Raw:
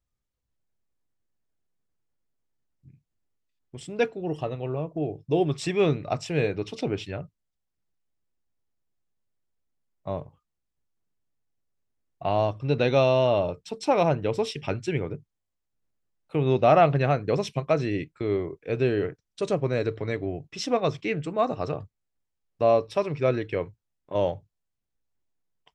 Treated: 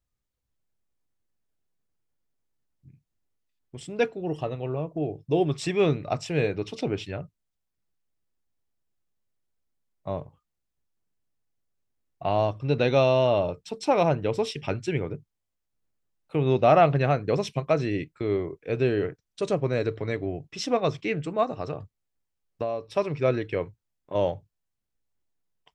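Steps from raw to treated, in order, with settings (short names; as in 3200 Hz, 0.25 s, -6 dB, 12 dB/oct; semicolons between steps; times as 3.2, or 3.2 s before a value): 21.43–22.97 compressor 6:1, threshold -27 dBFS, peak gain reduction 11 dB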